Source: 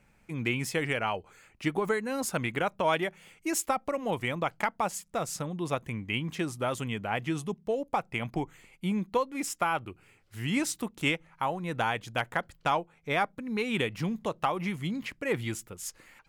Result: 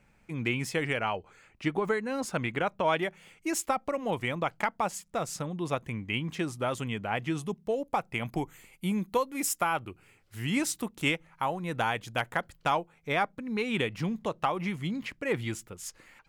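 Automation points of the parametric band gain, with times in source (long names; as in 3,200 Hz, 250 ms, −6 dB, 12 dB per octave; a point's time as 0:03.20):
parametric band 14,000 Hz 1.1 octaves
−5 dB
from 0:01.08 −12.5 dB
from 0:02.98 −4 dB
from 0:07.41 +2.5 dB
from 0:08.26 +11.5 dB
from 0:09.62 +2.5 dB
from 0:13.12 −5 dB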